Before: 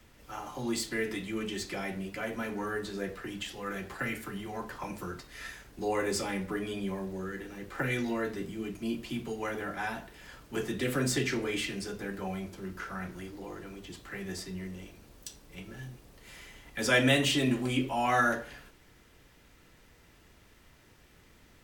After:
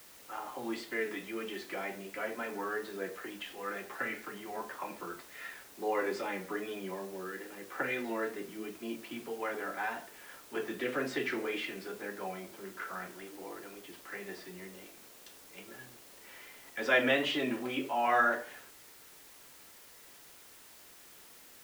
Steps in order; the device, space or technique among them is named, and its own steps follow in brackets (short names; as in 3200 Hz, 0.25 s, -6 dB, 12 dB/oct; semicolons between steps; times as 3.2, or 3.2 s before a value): wax cylinder (BPF 360–2600 Hz; wow and flutter; white noise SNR 18 dB)